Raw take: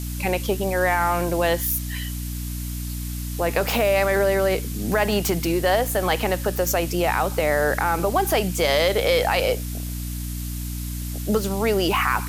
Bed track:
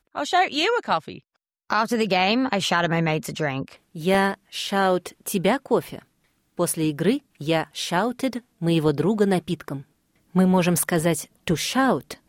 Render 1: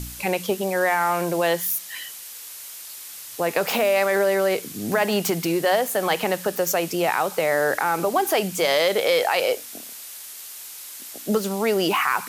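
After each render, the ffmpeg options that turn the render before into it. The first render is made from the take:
-af "bandreject=f=60:t=h:w=4,bandreject=f=120:t=h:w=4,bandreject=f=180:t=h:w=4,bandreject=f=240:t=h:w=4,bandreject=f=300:t=h:w=4"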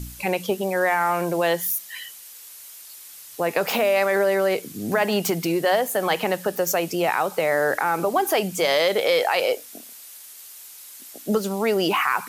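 -af "afftdn=nr=6:nf=-39"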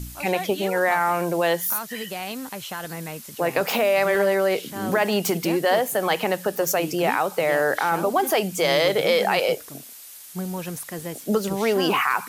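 -filter_complex "[1:a]volume=0.251[s0];[0:a][s0]amix=inputs=2:normalize=0"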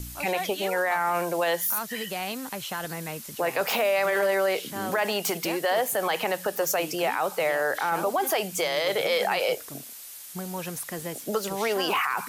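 -filter_complex "[0:a]acrossover=split=470|1400[s0][s1][s2];[s0]acompressor=threshold=0.0178:ratio=6[s3];[s3][s1][s2]amix=inputs=3:normalize=0,alimiter=limit=0.15:level=0:latency=1:release=17"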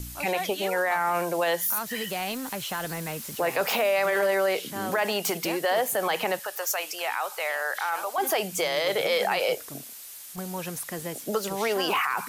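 -filter_complex "[0:a]asettb=1/sr,asplit=3[s0][s1][s2];[s0]atrim=end=1.864[s3];[s1]atrim=start=1.86:end=3.7,asetpts=PTS-STARTPTS,afade=t=in:d=0.004:c=qsin,afade=t=out:st=1.836:d=0.004:c=qsin,aeval=exprs='val(0)+0.5*0.00841*sgn(val(0))':c=same[s4];[s2]atrim=start=3.696[s5];[s3][s4]acrossfade=d=0.004:c1=hsin:c2=qsin[s6];[s6][s5]acrossfade=d=0.004:c1=qsin:c2=hsin,asettb=1/sr,asplit=3[s7][s8][s9];[s7]atrim=end=6.394[s10];[s8]atrim=start=6.39:end=8.18,asetpts=PTS-STARTPTS,afade=t=in:d=0.004:c=qsin,afade=t=out:st=1.786:d=0.004:c=qsin,highpass=850[s11];[s9]atrim=start=8.176[s12];[s10][s11]acrossfade=d=0.004:c1=hsin:c2=qsin[s13];[s13][s12]acrossfade=d=0.004:c1=qsin:c2=hsin,asettb=1/sr,asplit=3[s14][s15][s16];[s14]atrim=end=9.874[s17];[s15]atrim=start=9.87:end=10.38,asetpts=PTS-STARTPTS,afade=t=in:d=0.004:c=qsin,afade=t=out:st=0.506:d=0.004:c=qsin,asoftclip=type=hard:threshold=0.015[s18];[s16]atrim=start=10.376[s19];[s17][s18]acrossfade=d=0.004:c1=hsin:c2=qsin[s20];[s20][s19]acrossfade=d=0.004:c1=qsin:c2=hsin"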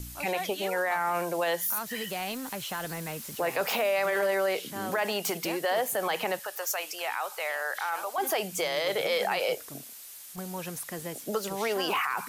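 -af "volume=0.708"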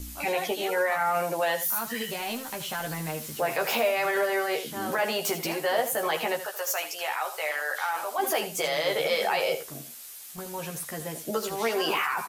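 -filter_complex "[0:a]asplit=2[s0][s1];[s1]adelay=13,volume=0.708[s2];[s0][s2]amix=inputs=2:normalize=0,aecho=1:1:79:0.251"

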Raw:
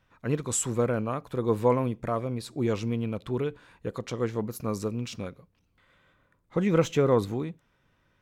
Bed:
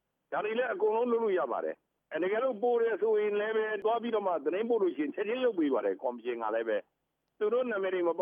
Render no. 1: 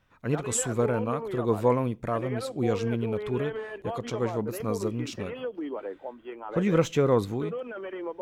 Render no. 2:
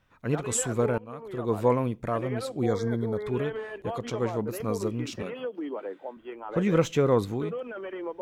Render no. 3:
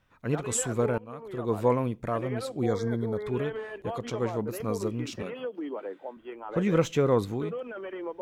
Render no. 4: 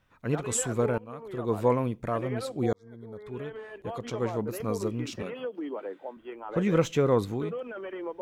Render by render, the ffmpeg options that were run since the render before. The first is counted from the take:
-filter_complex "[1:a]volume=0.531[s0];[0:a][s0]amix=inputs=2:normalize=0"
-filter_complex "[0:a]asettb=1/sr,asplit=3[s0][s1][s2];[s0]atrim=end=2.664[s3];[s1]atrim=start=2.66:end=3.27,asetpts=PTS-STARTPTS,afade=t=in:d=0.004:c=qsin,afade=t=out:st=0.606:d=0.004:c=qsin,asuperstop=centerf=2700:order=12:qfactor=2.4[s4];[s2]atrim=start=3.266[s5];[s3][s4]acrossfade=d=0.004:c1=hsin:c2=qsin[s6];[s6][s5]acrossfade=d=0.004:c1=qsin:c2=hsin,asettb=1/sr,asplit=3[s7][s8][s9];[s7]atrim=end=5.224[s10];[s8]atrim=start=5.22:end=6.17,asetpts=PTS-STARTPTS,afade=t=in:d=0.004:c=qsin,afade=t=out:st=0.946:d=0.004:c=qsin,highpass=f=150:w=0.5412,highpass=f=150:w=1.3066[s11];[s9]atrim=start=6.166[s12];[s10][s11]acrossfade=d=0.004:c1=hsin:c2=qsin[s13];[s13][s12]acrossfade=d=0.004:c1=qsin:c2=hsin,asplit=2[s14][s15];[s14]atrim=end=0.98,asetpts=PTS-STARTPTS,afade=t=out:st=0.976:d=0.004:c=hsin:silence=0.0749894[s16];[s15]atrim=start=0.98,asetpts=PTS-STARTPTS,afade=t=in:d=0.67:silence=0.0749894[s17];[s16][s17]concat=n=2:v=0:a=1"
-af "volume=0.891"
-filter_complex "[0:a]asplit=2[s0][s1];[s0]atrim=end=2.73,asetpts=PTS-STARTPTS,afade=t=out:st=2.726:d=0.004:c=hsin[s2];[s1]atrim=start=2.73,asetpts=PTS-STARTPTS,afade=t=in:d=1.58[s3];[s2][s3]concat=n=2:v=0:a=1"

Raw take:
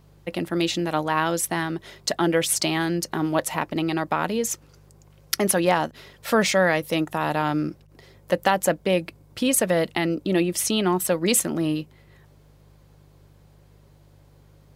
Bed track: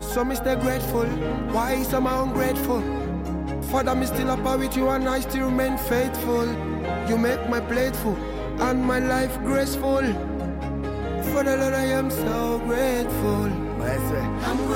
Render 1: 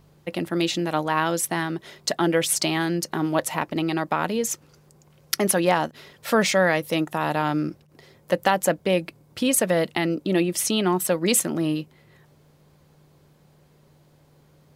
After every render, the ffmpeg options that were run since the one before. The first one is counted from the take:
-af "bandreject=f=50:t=h:w=4,bandreject=f=100:t=h:w=4"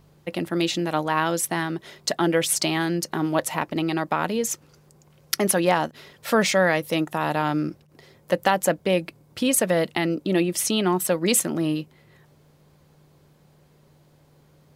-af anull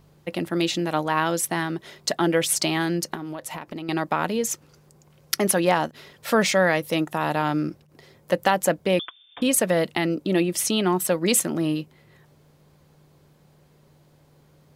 -filter_complex "[0:a]asettb=1/sr,asplit=3[s0][s1][s2];[s0]atrim=end=3.144[s3];[s1]atrim=start=3.14:end=3.89,asetpts=PTS-STARTPTS,afade=t=in:d=0.004:c=qsin,afade=t=out:st=0.746:d=0.004:c=qsin,acompressor=threshold=0.0355:ratio=12:attack=3.2:release=140:knee=1:detection=peak[s4];[s2]atrim=start=3.886[s5];[s3][s4]acrossfade=d=0.004:c1=hsin:c2=qsin[s6];[s6][s5]acrossfade=d=0.004:c1=qsin:c2=hsin,asettb=1/sr,asplit=3[s7][s8][s9];[s7]atrim=end=8.994[s10];[s8]atrim=start=8.99:end=9.42,asetpts=PTS-STARTPTS,afade=t=in:d=0.004:c=qsin,afade=t=out:st=0.426:d=0.004:c=qsin,lowpass=f=3100:t=q:w=0.5098,lowpass=f=3100:t=q:w=0.6013,lowpass=f=3100:t=q:w=0.9,lowpass=f=3100:t=q:w=2.563,afreqshift=-3700[s11];[s9]atrim=start=9.416[s12];[s10][s11]acrossfade=d=0.004:c1=hsin:c2=qsin[s13];[s13][s12]acrossfade=d=0.004:c1=qsin:c2=hsin"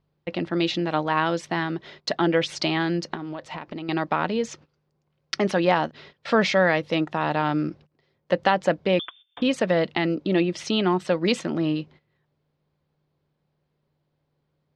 -af "lowpass=f=4800:w=0.5412,lowpass=f=4800:w=1.3066,agate=range=0.141:threshold=0.00501:ratio=16:detection=peak"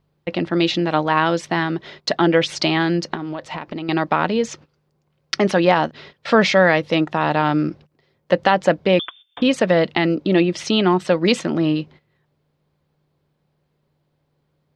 -af "volume=1.88,alimiter=limit=0.794:level=0:latency=1"

